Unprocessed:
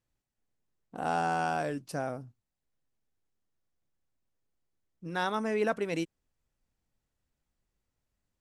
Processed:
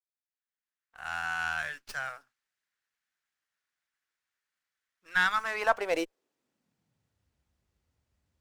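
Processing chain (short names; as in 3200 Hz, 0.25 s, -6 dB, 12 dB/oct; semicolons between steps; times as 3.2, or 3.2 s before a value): opening faded in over 2.23 s; high-pass sweep 1600 Hz -> 68 Hz, 5.32–7.31; running maximum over 3 samples; gain +4 dB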